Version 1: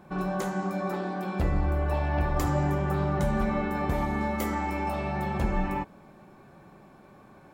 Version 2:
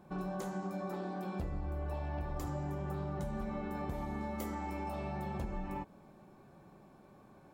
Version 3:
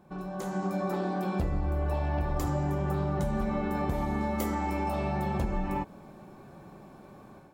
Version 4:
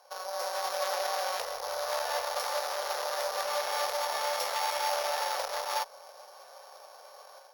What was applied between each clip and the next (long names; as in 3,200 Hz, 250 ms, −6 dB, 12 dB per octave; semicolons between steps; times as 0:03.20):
downward compressor, threshold −29 dBFS, peak gain reduction 8.5 dB; parametric band 1,900 Hz −5 dB 1.5 octaves; level −5.5 dB
automatic gain control gain up to 9 dB
samples sorted by size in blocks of 8 samples; harmonic generator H 5 −17 dB, 6 −10 dB, 8 −8 dB, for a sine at −17 dBFS; elliptic high-pass filter 510 Hz, stop band 40 dB